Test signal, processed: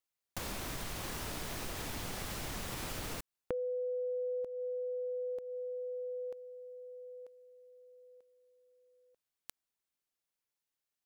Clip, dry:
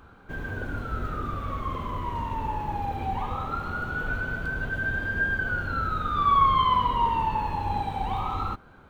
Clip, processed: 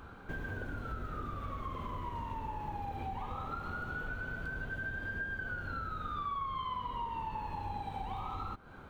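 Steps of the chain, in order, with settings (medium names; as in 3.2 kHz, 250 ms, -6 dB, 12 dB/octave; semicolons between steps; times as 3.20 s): compression 6:1, threshold -38 dBFS; trim +1 dB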